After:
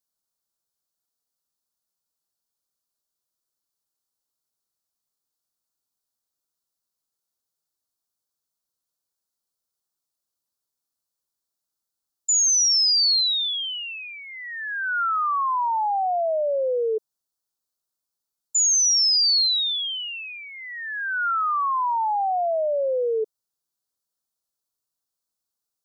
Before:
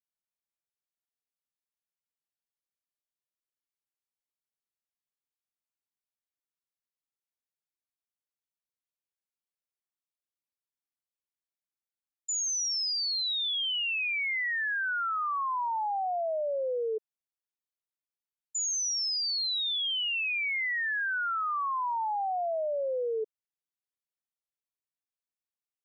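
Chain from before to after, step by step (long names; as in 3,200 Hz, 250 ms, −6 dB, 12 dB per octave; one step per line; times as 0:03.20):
drawn EQ curve 1,400 Hz 0 dB, 2,200 Hz −17 dB, 4,300 Hz +4 dB
level +7.5 dB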